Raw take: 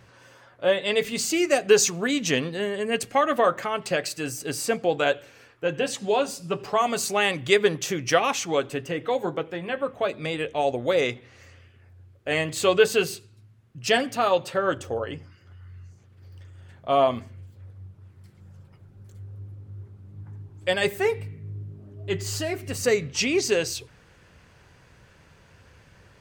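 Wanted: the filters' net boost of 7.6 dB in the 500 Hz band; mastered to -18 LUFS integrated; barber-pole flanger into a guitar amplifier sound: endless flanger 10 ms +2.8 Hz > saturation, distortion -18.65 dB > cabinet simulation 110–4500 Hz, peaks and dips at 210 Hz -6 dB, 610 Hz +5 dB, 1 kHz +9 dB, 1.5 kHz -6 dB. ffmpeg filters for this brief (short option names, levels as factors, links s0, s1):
-filter_complex "[0:a]equalizer=f=500:t=o:g=6.5,asplit=2[s0][s1];[s1]adelay=10,afreqshift=2.8[s2];[s0][s2]amix=inputs=2:normalize=1,asoftclip=threshold=0.282,highpass=110,equalizer=f=210:t=q:w=4:g=-6,equalizer=f=610:t=q:w=4:g=5,equalizer=f=1000:t=q:w=4:g=9,equalizer=f=1500:t=q:w=4:g=-6,lowpass=f=4500:w=0.5412,lowpass=f=4500:w=1.3066,volume=1.88"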